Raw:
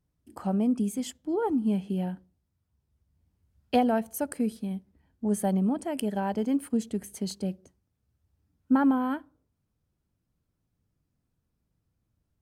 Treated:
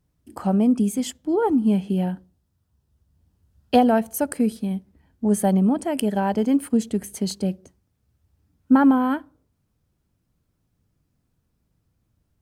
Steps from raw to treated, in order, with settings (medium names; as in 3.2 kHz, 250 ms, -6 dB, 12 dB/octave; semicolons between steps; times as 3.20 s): 2.11–3.84 s: peaking EQ 2.2 kHz -6.5 dB 0.27 oct; trim +7 dB